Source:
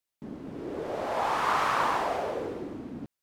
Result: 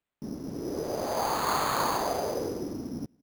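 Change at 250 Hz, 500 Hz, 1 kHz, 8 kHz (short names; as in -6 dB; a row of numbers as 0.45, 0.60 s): +3.0, +1.0, -2.0, +9.5 dB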